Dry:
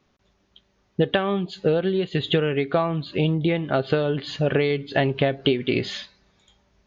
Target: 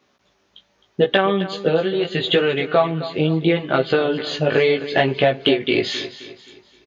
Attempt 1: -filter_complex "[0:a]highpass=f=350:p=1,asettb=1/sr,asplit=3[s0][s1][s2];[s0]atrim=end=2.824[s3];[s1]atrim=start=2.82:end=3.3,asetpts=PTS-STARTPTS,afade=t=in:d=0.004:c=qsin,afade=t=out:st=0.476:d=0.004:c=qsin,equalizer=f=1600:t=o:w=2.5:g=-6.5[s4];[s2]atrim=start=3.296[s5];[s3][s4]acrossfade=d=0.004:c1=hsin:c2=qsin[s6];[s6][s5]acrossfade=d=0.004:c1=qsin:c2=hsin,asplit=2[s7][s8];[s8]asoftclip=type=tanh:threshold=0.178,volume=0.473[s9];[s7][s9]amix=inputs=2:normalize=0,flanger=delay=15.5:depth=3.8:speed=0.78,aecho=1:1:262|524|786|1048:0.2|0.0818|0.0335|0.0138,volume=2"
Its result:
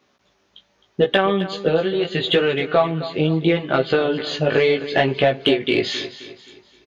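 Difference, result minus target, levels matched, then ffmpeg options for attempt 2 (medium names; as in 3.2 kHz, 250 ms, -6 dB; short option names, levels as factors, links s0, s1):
saturation: distortion +9 dB
-filter_complex "[0:a]highpass=f=350:p=1,asettb=1/sr,asplit=3[s0][s1][s2];[s0]atrim=end=2.824[s3];[s1]atrim=start=2.82:end=3.3,asetpts=PTS-STARTPTS,afade=t=in:d=0.004:c=qsin,afade=t=out:st=0.476:d=0.004:c=qsin,equalizer=f=1600:t=o:w=2.5:g=-6.5[s4];[s2]atrim=start=3.296[s5];[s3][s4]acrossfade=d=0.004:c1=hsin:c2=qsin[s6];[s6][s5]acrossfade=d=0.004:c1=qsin:c2=hsin,asplit=2[s7][s8];[s8]asoftclip=type=tanh:threshold=0.376,volume=0.473[s9];[s7][s9]amix=inputs=2:normalize=0,flanger=delay=15.5:depth=3.8:speed=0.78,aecho=1:1:262|524|786|1048:0.2|0.0818|0.0335|0.0138,volume=2"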